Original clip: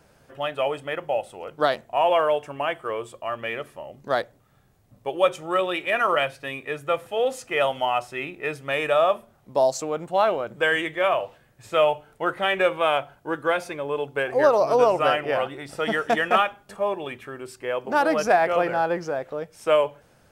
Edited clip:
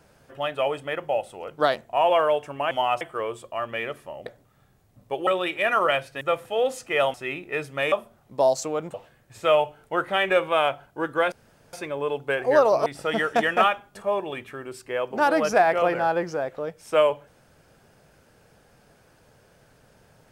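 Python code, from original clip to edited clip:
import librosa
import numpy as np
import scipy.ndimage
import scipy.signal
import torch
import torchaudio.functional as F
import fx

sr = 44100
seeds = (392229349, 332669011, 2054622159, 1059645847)

y = fx.edit(x, sr, fx.cut(start_s=3.96, length_s=0.25),
    fx.cut(start_s=5.22, length_s=0.33),
    fx.cut(start_s=6.49, length_s=0.33),
    fx.move(start_s=7.75, length_s=0.3, to_s=2.71),
    fx.cut(start_s=8.83, length_s=0.26),
    fx.cut(start_s=10.11, length_s=1.12),
    fx.insert_room_tone(at_s=13.61, length_s=0.41),
    fx.cut(start_s=14.74, length_s=0.86), tone=tone)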